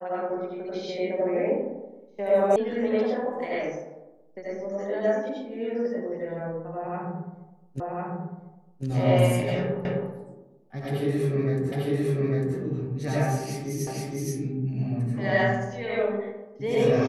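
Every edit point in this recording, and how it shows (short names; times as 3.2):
2.56 sound cut off
7.8 repeat of the last 1.05 s
9.85 repeat of the last 0.26 s
11.72 repeat of the last 0.85 s
13.87 repeat of the last 0.47 s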